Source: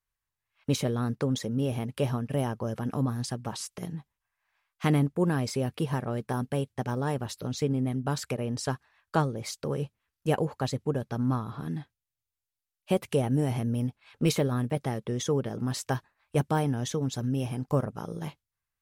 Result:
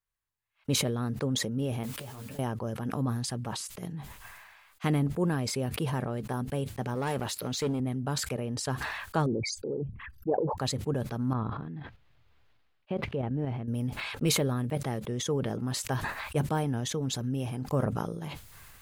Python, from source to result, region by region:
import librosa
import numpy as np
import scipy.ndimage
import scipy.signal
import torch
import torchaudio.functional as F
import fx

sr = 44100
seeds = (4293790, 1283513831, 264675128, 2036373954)

y = fx.chain(x, sr, fx.over_compress(threshold_db=-36.0, ratio=-1.0),
    fx.mod_noise(seeds[0], snr_db=12),
    fx.ensemble(), at=(1.83, 2.39))
y = fx.chain(y, sr, fx.highpass(hz=42.0, slope=12),
    fx.low_shelf(hz=280.0, db=-10.0),
    fx.leveller(passes=2), at=(6.95, 7.8))
y = fx.chain(y, sr, fx.envelope_sharpen(power=3.0),
    fx.doppler_dist(depth_ms=0.1), at=(9.26, 10.58))
y = fx.chain(y, sr, fx.air_absorb(metres=320.0),
    fx.level_steps(step_db=9), at=(11.33, 13.68))
y = fx.peak_eq(y, sr, hz=5600.0, db=-4.0, octaves=0.22)
y = fx.sustainer(y, sr, db_per_s=33.0)
y = y * 10.0 ** (-3.0 / 20.0)